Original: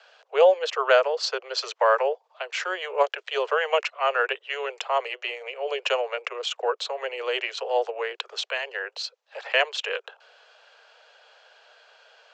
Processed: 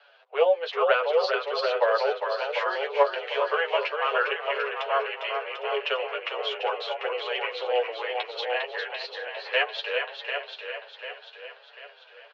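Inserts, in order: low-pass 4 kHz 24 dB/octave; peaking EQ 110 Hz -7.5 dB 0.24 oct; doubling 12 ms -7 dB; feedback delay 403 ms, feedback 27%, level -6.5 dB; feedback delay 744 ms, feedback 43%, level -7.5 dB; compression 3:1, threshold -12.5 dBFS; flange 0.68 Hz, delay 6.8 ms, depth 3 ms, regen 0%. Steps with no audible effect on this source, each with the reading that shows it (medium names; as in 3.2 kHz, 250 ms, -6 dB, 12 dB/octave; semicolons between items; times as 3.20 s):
peaking EQ 110 Hz: input has nothing below 340 Hz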